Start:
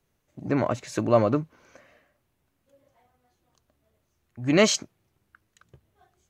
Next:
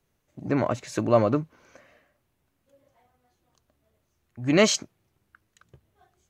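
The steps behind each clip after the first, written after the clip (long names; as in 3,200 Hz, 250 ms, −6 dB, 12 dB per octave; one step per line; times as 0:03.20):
no processing that can be heard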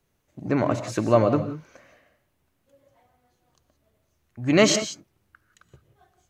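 reverb whose tail is shaped and stops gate 200 ms rising, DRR 10 dB
level +1.5 dB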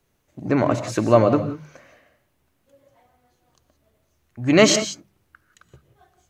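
mains-hum notches 50/100/150/200 Hz
level +3.5 dB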